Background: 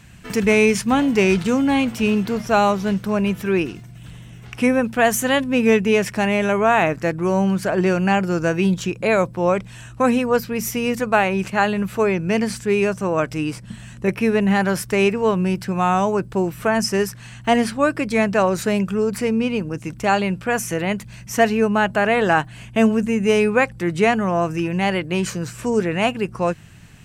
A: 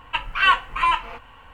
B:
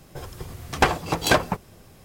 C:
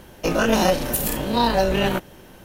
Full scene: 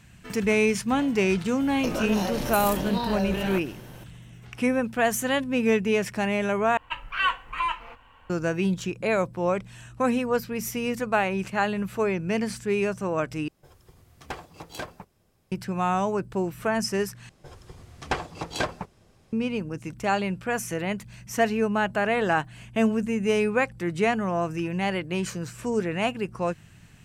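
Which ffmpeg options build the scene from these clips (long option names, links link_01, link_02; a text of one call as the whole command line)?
ffmpeg -i bed.wav -i cue0.wav -i cue1.wav -i cue2.wav -filter_complex "[2:a]asplit=2[link_01][link_02];[0:a]volume=-6.5dB[link_03];[3:a]acompressor=threshold=-25dB:ratio=6:attack=3.2:release=140:knee=1:detection=peak[link_04];[link_02]lowpass=8600[link_05];[link_03]asplit=4[link_06][link_07][link_08][link_09];[link_06]atrim=end=6.774[link_10];[1:a]atrim=end=1.53,asetpts=PTS-STARTPTS,volume=-7.5dB[link_11];[link_07]atrim=start=8.296:end=13.484[link_12];[link_01]atrim=end=2.04,asetpts=PTS-STARTPTS,volume=-17.5dB[link_13];[link_08]atrim=start=15.516:end=17.294[link_14];[link_05]atrim=end=2.04,asetpts=PTS-STARTPTS,volume=-9dB[link_15];[link_09]atrim=start=19.326[link_16];[link_04]atrim=end=2.44,asetpts=PTS-STARTPTS,volume=-0.5dB,afade=type=in:duration=0.004:curve=hsin,afade=type=out:start_time=2.436:duration=0.004:curve=hsin,adelay=1600[link_17];[link_10][link_11]acrossfade=duration=0.004:curve1=hsin:curve2=hsin[link_18];[link_18][link_12]acrossfade=duration=0.004:curve1=hsin:curve2=hsin[link_19];[link_19][link_13]acrossfade=duration=0.004:curve1=hsin:curve2=hsin[link_20];[link_20][link_14]acrossfade=duration=0.004:curve1=hsin:curve2=hsin[link_21];[link_21][link_15]acrossfade=duration=0.004:curve1=hsin:curve2=hsin[link_22];[link_22][link_16]acrossfade=duration=0.004:curve1=hsin:curve2=hsin[link_23];[link_23][link_17]amix=inputs=2:normalize=0" out.wav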